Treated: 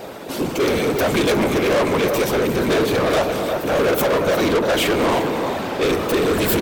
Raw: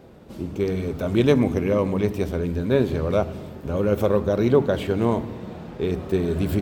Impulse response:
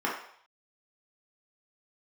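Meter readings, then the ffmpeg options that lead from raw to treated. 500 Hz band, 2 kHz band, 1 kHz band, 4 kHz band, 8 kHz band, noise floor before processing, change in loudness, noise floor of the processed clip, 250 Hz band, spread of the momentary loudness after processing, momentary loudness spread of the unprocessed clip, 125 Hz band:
+4.5 dB, +12.5 dB, +11.0 dB, +14.0 dB, can't be measured, −40 dBFS, +4.0 dB, −28 dBFS, +2.0 dB, 4 LU, 13 LU, −2.5 dB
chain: -filter_complex "[0:a]equalizer=frequency=190:width_type=o:width=0.26:gain=-6.5,alimiter=limit=-12.5dB:level=0:latency=1:release=165,afftfilt=real='hypot(re,im)*cos(2*PI*random(0))':imag='hypot(re,im)*sin(2*PI*random(1))':win_size=512:overlap=0.75,aecho=1:1:352:0.237,asplit=2[link_01][link_02];[link_02]highpass=frequency=720:poles=1,volume=28dB,asoftclip=type=tanh:threshold=-15dB[link_03];[link_01][link_03]amix=inputs=2:normalize=0,lowpass=frequency=6900:poles=1,volume=-6dB,highshelf=frequency=8700:gain=12,volume=4.5dB"

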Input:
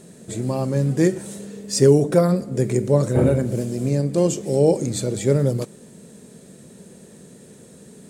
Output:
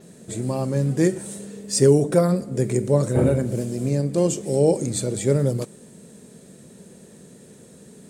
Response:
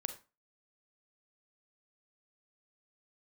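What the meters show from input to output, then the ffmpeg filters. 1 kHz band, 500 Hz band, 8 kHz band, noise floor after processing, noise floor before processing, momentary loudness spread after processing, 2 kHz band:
−1.5 dB, −1.5 dB, +1.0 dB, −48 dBFS, −46 dBFS, 13 LU, −1.5 dB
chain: -af "adynamicequalizer=threshold=0.00447:dfrequency=8700:dqfactor=3.3:tfrequency=8700:tqfactor=3.3:attack=5:release=100:ratio=0.375:range=3:mode=boostabove:tftype=bell,volume=-1.5dB"

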